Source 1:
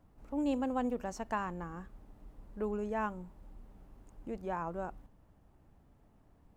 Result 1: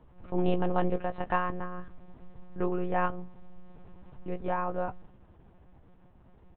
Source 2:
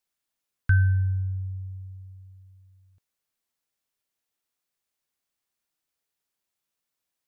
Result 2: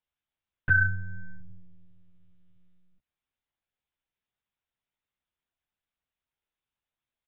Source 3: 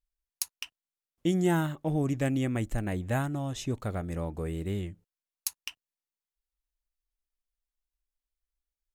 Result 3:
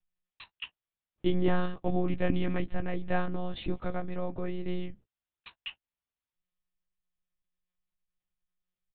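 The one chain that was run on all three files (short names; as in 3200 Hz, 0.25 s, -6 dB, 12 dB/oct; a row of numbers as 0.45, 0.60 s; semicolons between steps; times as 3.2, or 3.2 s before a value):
monotone LPC vocoder at 8 kHz 180 Hz; doubler 15 ms -11 dB; normalise peaks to -12 dBFS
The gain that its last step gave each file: +7.0, -3.0, +1.0 dB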